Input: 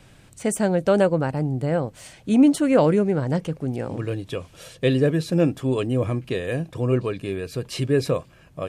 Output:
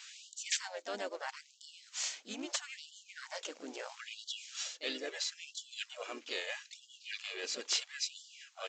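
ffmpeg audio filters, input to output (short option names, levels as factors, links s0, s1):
-filter_complex "[0:a]lowshelf=f=360:g=-11,areverse,acompressor=threshold=0.0158:ratio=5,areverse,asplit=3[s0][s1][s2];[s1]asetrate=22050,aresample=44100,atempo=2,volume=0.251[s3];[s2]asetrate=52444,aresample=44100,atempo=0.840896,volume=0.501[s4];[s0][s3][s4]amix=inputs=3:normalize=0,crystalizer=i=8.5:c=0,acrusher=bits=4:mode=log:mix=0:aa=0.000001,aeval=exprs='(mod(3.76*val(0)+1,2)-1)/3.76':c=same,aresample=16000,aresample=44100,afftfilt=real='re*gte(b*sr/1024,210*pow(2900/210,0.5+0.5*sin(2*PI*0.76*pts/sr)))':imag='im*gte(b*sr/1024,210*pow(2900/210,0.5+0.5*sin(2*PI*0.76*pts/sr)))':win_size=1024:overlap=0.75,volume=0.473"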